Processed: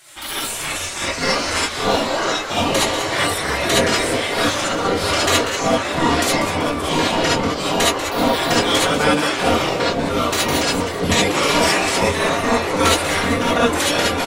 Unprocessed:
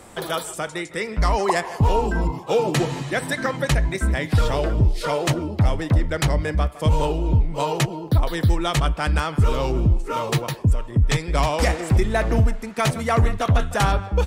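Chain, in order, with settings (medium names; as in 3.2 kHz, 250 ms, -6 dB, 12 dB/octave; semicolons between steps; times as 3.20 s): ever faster or slower copies 201 ms, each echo -5 st, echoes 3; comb 4.2 ms, depth 80%; spectral gate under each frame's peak -15 dB weak; frequency-shifting echo 191 ms, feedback 50%, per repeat +99 Hz, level -11 dB; gated-style reverb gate 90 ms rising, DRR -5 dB; trim +1.5 dB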